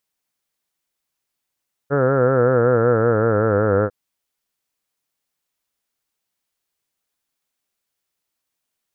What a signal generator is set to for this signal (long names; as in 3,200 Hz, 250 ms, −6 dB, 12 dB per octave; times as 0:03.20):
vowel by formant synthesis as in heard, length 2.00 s, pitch 137 Hz, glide −5.5 semitones